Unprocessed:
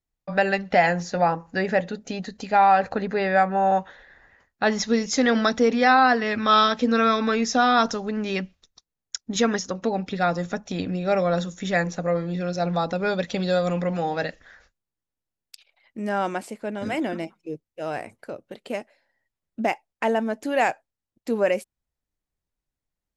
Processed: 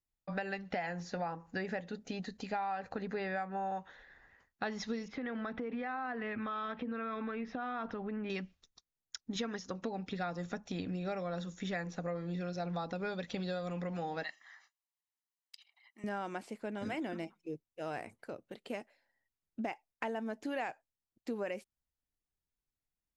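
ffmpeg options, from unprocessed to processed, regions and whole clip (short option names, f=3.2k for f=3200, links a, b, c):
-filter_complex "[0:a]asettb=1/sr,asplit=3[a][b][c];[a]atrim=end=5.084[d];[b]atrim=start=5.08:end=8.3,asetpts=PTS-STARTPTS,afade=t=in:d=0.004:c=qsin,afade=t=out:st=3.216:d=0.004:c=qsin,lowpass=f=2.7k:w=0.5412,lowpass=f=2.7k:w=1.3066,acompressor=threshold=-26dB:ratio=6:attack=3.2:release=140:knee=1:detection=peak[e];[c]atrim=start=8.296[f];[d][e]acrossfade=d=0.004:c1=hsin:c2=qsin[g];[g][f]acrossfade=d=0.004:c1=qsin:c2=hsin,asettb=1/sr,asplit=3[h][i][j];[h]atrim=end=14.234[k];[i]atrim=start=14.23:end=16.04,asetpts=PTS-STARTPTS,afade=t=in:d=0.004:c=qsin,afade=t=out:st=1.806:d=0.004:c=qsin,highpass=750,aecho=1:1:1:0.83,atrim=end_sample=79821[l];[j]atrim=start=16.036[m];[k][l]acrossfade=d=0.004:c1=hsin:c2=qsin[n];[n][m]acrossfade=d=0.004:c1=qsin:c2=hsin,acrossover=split=5500[o][p];[p]acompressor=threshold=-53dB:ratio=4:attack=1:release=60[q];[o][q]amix=inputs=2:normalize=0,equalizer=f=580:w=4.1:g=-3.5,acompressor=threshold=-27dB:ratio=6,volume=-7.5dB"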